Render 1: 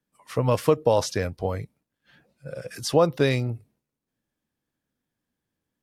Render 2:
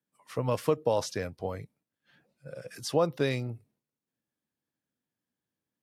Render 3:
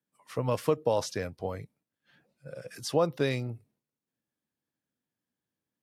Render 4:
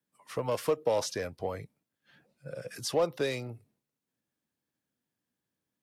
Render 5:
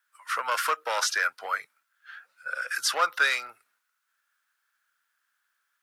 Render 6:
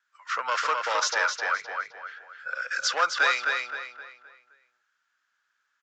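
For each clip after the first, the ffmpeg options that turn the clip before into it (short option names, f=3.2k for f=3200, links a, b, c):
-af "highpass=100,volume=-6.5dB"
-af anull
-filter_complex "[0:a]acrossover=split=390|650|4600[a][b][c][d];[a]acompressor=threshold=-41dB:ratio=6[e];[c]asoftclip=type=tanh:threshold=-35.5dB[f];[e][b][f][d]amix=inputs=4:normalize=0,volume=2dB"
-af "highpass=f=1.4k:t=q:w=6.8,volume=8.5dB"
-filter_complex "[0:a]asplit=2[a][b];[b]adelay=260,lowpass=f=4.3k:p=1,volume=-3dB,asplit=2[c][d];[d]adelay=260,lowpass=f=4.3k:p=1,volume=0.4,asplit=2[e][f];[f]adelay=260,lowpass=f=4.3k:p=1,volume=0.4,asplit=2[g][h];[h]adelay=260,lowpass=f=4.3k:p=1,volume=0.4,asplit=2[i][j];[j]adelay=260,lowpass=f=4.3k:p=1,volume=0.4[k];[a][c][e][g][i][k]amix=inputs=6:normalize=0,aresample=16000,aresample=44100"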